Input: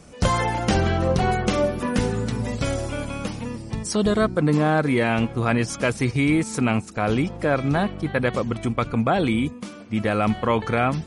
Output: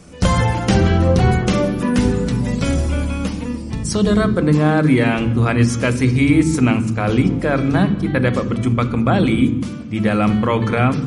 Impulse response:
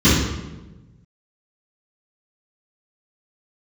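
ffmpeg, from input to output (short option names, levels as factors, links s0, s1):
-filter_complex "[0:a]equalizer=f=760:w=1.5:g=-2.5,asplit=2[s0][s1];[1:a]atrim=start_sample=2205,adelay=9[s2];[s1][s2]afir=irnorm=-1:irlink=0,volume=0.0188[s3];[s0][s3]amix=inputs=2:normalize=0,volume=1.5"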